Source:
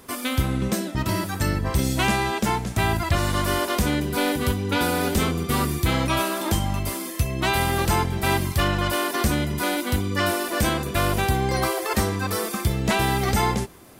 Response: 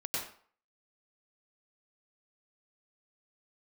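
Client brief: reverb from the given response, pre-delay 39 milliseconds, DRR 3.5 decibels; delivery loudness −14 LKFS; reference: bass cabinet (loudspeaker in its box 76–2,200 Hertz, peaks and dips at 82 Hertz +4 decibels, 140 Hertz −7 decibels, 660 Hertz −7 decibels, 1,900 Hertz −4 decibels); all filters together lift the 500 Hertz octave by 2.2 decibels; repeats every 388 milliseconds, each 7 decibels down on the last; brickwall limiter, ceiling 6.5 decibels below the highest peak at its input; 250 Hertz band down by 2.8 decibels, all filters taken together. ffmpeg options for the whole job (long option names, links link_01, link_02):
-filter_complex "[0:a]equalizer=frequency=250:width_type=o:gain=-5.5,equalizer=frequency=500:width_type=o:gain=7,alimiter=limit=-15dB:level=0:latency=1,aecho=1:1:388|776|1164|1552|1940:0.447|0.201|0.0905|0.0407|0.0183,asplit=2[link_01][link_02];[1:a]atrim=start_sample=2205,adelay=39[link_03];[link_02][link_03]afir=irnorm=-1:irlink=0,volume=-7dB[link_04];[link_01][link_04]amix=inputs=2:normalize=0,highpass=frequency=76:width=0.5412,highpass=frequency=76:width=1.3066,equalizer=frequency=82:width_type=q:width=4:gain=4,equalizer=frequency=140:width_type=q:width=4:gain=-7,equalizer=frequency=660:width_type=q:width=4:gain=-7,equalizer=frequency=1900:width_type=q:width=4:gain=-4,lowpass=frequency=2200:width=0.5412,lowpass=frequency=2200:width=1.3066,volume=11dB"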